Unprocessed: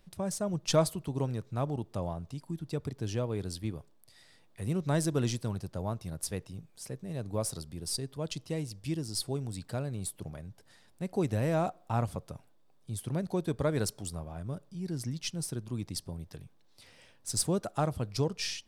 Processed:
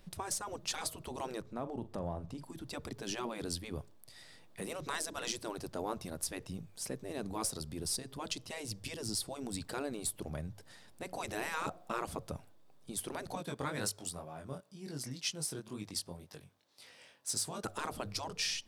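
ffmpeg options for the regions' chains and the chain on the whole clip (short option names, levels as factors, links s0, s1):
-filter_complex "[0:a]asettb=1/sr,asplit=3[s0][s1][s2];[s0]atrim=end=1.414[s3];[s1]atrim=start=1.41:end=2.44,asetpts=PTS-STARTPTS,afade=t=in:d=0.004:c=qsin,afade=t=out:st=1.026:d=0.004:c=qsin,highshelf=f=2200:g=-8.5,acompressor=threshold=0.0178:ratio=12:attack=3.2:release=140:knee=1:detection=peak,asplit=2[s4][s5];[s5]adelay=42,volume=0.211[s6];[s4][s6]amix=inputs=2:normalize=0,atrim=end_sample=45423[s7];[s2]atrim=start=2.436[s8];[s3][s7]acrossfade=d=0.004:c1=hsin:c2=qsin[s9];[s9][s8]acrossfade=d=0.004:c1=qsin:c2=hsin,asettb=1/sr,asplit=3[s10][s11][s12];[s10]atrim=end=13.354[s13];[s11]atrim=start=13.35:end=17.64,asetpts=PTS-STARTPTS,afade=t=in:d=0.004:c=qsin,afade=t=out:st=4.286:d=0.004:c=qsin,highpass=f=430:p=1,flanger=delay=19.5:depth=3.4:speed=2[s14];[s12]atrim=start=17.636[s15];[s13][s14]acrossfade=d=0.004:c1=hsin:c2=qsin[s16];[s16][s15]acrossfade=d=0.004:c1=qsin:c2=hsin,afftfilt=real='re*lt(hypot(re,im),0.0794)':imag='im*lt(hypot(re,im),0.0794)':win_size=1024:overlap=0.75,alimiter=level_in=1.5:limit=0.0631:level=0:latency=1:release=262,volume=0.668,bandreject=f=50:t=h:w=6,bandreject=f=100:t=h:w=6,volume=1.58"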